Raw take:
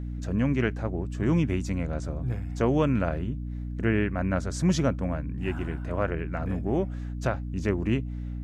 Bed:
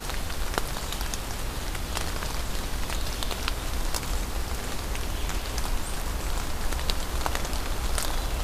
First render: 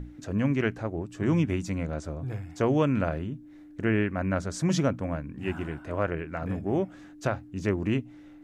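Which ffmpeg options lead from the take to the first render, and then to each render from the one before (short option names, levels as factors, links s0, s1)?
-af "bandreject=f=60:t=h:w=6,bandreject=f=120:t=h:w=6,bandreject=f=180:t=h:w=6,bandreject=f=240:t=h:w=6"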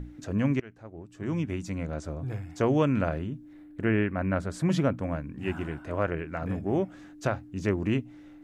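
-filter_complex "[0:a]asettb=1/sr,asplit=3[s0][s1][s2];[s0]atrim=end=3.534[s3];[s1]atrim=start=3.53:end=4.98,asetpts=PTS-STARTPTS,afade=t=in:d=0.004:c=qsin,afade=t=out:st=1.446:d=0.004:c=qsin,equalizer=f=6000:t=o:w=0.76:g=-10[s4];[s2]atrim=start=4.976[s5];[s3][s4]acrossfade=d=0.004:c1=hsin:c2=qsin[s6];[s6][s5]acrossfade=d=0.004:c1=qsin:c2=hsin,asplit=2[s7][s8];[s7]atrim=end=0.6,asetpts=PTS-STARTPTS,afade=t=out:st=0.596:d=0.004:c=hsin:silence=0.0668344[s9];[s8]atrim=start=0.6,asetpts=PTS-STARTPTS,afade=t=in:d=1.56:silence=0.0668344[s10];[s9][s10]concat=n=2:v=0:a=1"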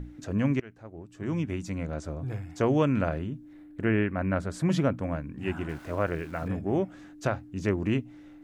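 -filter_complex "[0:a]asettb=1/sr,asplit=3[s0][s1][s2];[s0]atrim=end=5.694[s3];[s1]atrim=start=5.69:end=6.48,asetpts=PTS-STARTPTS,afade=t=in:d=0.004:c=qsin,afade=t=out:st=0.786:d=0.004:c=qsin,aeval=exprs='val(0)*gte(abs(val(0)),0.00422)':c=same[s4];[s2]atrim=start=6.476[s5];[s3][s4]acrossfade=d=0.004:c1=hsin:c2=qsin[s6];[s6][s5]acrossfade=d=0.004:c1=qsin:c2=hsin"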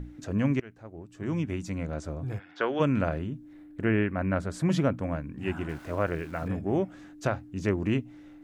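-filter_complex "[0:a]asplit=3[s0][s1][s2];[s0]afade=t=out:st=2.38:d=0.02[s3];[s1]highpass=440,equalizer=f=680:t=q:w=4:g=-4,equalizer=f=1500:t=q:w=4:g=10,equalizer=f=3400:t=q:w=4:g=8,lowpass=f=4300:w=0.5412,lowpass=f=4300:w=1.3066,afade=t=in:st=2.38:d=0.02,afade=t=out:st=2.79:d=0.02[s4];[s2]afade=t=in:st=2.79:d=0.02[s5];[s3][s4][s5]amix=inputs=3:normalize=0"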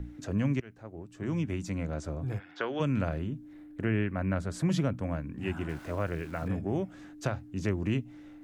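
-filter_complex "[0:a]acrossover=split=180|3000[s0][s1][s2];[s1]acompressor=threshold=0.02:ratio=2[s3];[s0][s3][s2]amix=inputs=3:normalize=0"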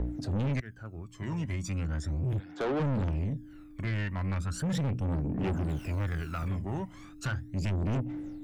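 -af "aphaser=in_gain=1:out_gain=1:delay=1.1:decay=0.78:speed=0.37:type=triangular,asoftclip=type=tanh:threshold=0.0447"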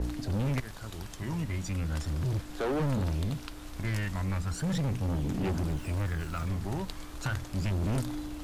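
-filter_complex "[1:a]volume=0.188[s0];[0:a][s0]amix=inputs=2:normalize=0"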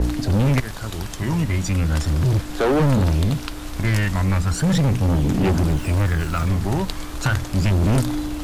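-af "volume=3.98"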